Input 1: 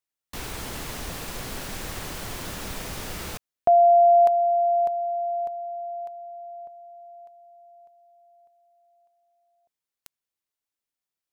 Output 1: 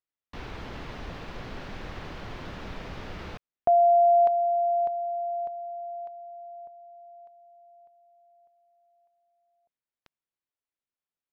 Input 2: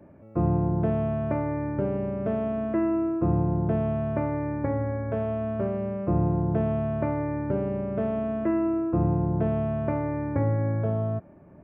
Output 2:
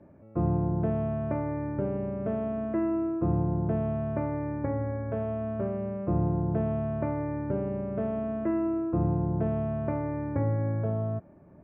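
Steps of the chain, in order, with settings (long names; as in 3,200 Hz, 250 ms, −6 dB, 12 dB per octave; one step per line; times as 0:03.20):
high-frequency loss of the air 250 metres
level −2.5 dB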